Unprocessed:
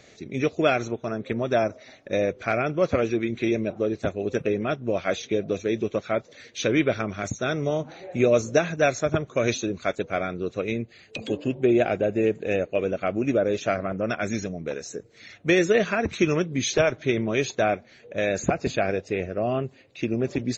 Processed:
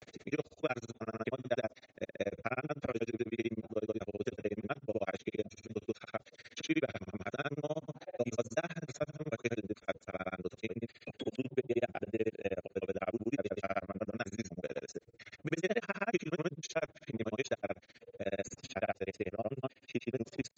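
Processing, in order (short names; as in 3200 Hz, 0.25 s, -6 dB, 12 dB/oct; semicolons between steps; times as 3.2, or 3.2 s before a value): grains 54 ms, grains 16/s, pitch spread up and down by 0 st; three-band squash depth 40%; gain -8 dB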